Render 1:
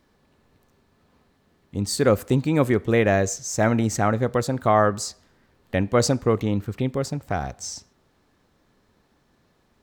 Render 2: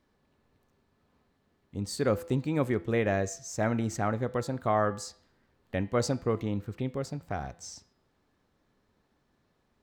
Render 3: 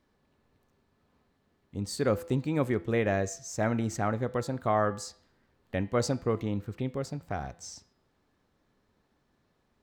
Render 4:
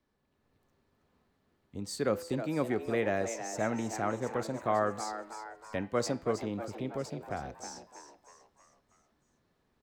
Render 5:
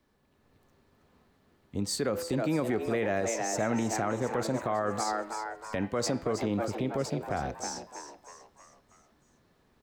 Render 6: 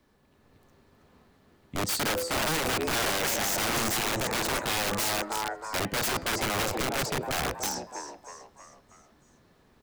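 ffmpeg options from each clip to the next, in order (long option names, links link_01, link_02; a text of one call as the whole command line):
ffmpeg -i in.wav -af "highshelf=frequency=5500:gain=-4.5,bandreject=frequency=168.6:width_type=h:width=4,bandreject=frequency=337.2:width_type=h:width=4,bandreject=frequency=505.8:width_type=h:width=4,bandreject=frequency=674.4:width_type=h:width=4,bandreject=frequency=843:width_type=h:width=4,bandreject=frequency=1011.6:width_type=h:width=4,bandreject=frequency=1180.2:width_type=h:width=4,bandreject=frequency=1348.8:width_type=h:width=4,bandreject=frequency=1517.4:width_type=h:width=4,bandreject=frequency=1686:width_type=h:width=4,bandreject=frequency=1854.6:width_type=h:width=4,bandreject=frequency=2023.2:width_type=h:width=4,bandreject=frequency=2191.8:width_type=h:width=4,bandreject=frequency=2360.4:width_type=h:width=4,bandreject=frequency=2529:width_type=h:width=4,bandreject=frequency=2697.6:width_type=h:width=4,bandreject=frequency=2866.2:width_type=h:width=4,bandreject=frequency=3034.8:width_type=h:width=4,bandreject=frequency=3203.4:width_type=h:width=4,bandreject=frequency=3372:width_type=h:width=4,bandreject=frequency=3540.6:width_type=h:width=4,bandreject=frequency=3709.2:width_type=h:width=4,bandreject=frequency=3877.8:width_type=h:width=4,bandreject=frequency=4046.4:width_type=h:width=4,bandreject=frequency=4215:width_type=h:width=4,bandreject=frequency=4383.6:width_type=h:width=4,bandreject=frequency=4552.2:width_type=h:width=4,bandreject=frequency=4720.8:width_type=h:width=4,bandreject=frequency=4889.4:width_type=h:width=4,bandreject=frequency=5058:width_type=h:width=4,volume=-8dB" out.wav
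ffmpeg -i in.wav -af anull out.wav
ffmpeg -i in.wav -filter_complex "[0:a]acrossover=split=180|610|1900[link_01][link_02][link_03][link_04];[link_01]acompressor=threshold=-43dB:ratio=6[link_05];[link_05][link_02][link_03][link_04]amix=inputs=4:normalize=0,asplit=6[link_06][link_07][link_08][link_09][link_10][link_11];[link_07]adelay=320,afreqshift=110,volume=-10dB[link_12];[link_08]adelay=640,afreqshift=220,volume=-16.2dB[link_13];[link_09]adelay=960,afreqshift=330,volume=-22.4dB[link_14];[link_10]adelay=1280,afreqshift=440,volume=-28.6dB[link_15];[link_11]adelay=1600,afreqshift=550,volume=-34.8dB[link_16];[link_06][link_12][link_13][link_14][link_15][link_16]amix=inputs=6:normalize=0,dynaudnorm=framelen=300:gausssize=3:maxgain=4.5dB,volume=-7dB" out.wav
ffmpeg -i in.wav -af "alimiter=level_in=3.5dB:limit=-24dB:level=0:latency=1:release=61,volume=-3.5dB,volume=7.5dB" out.wav
ffmpeg -i in.wav -af "aeval=exprs='(mod(23.7*val(0)+1,2)-1)/23.7':channel_layout=same,volume=5dB" out.wav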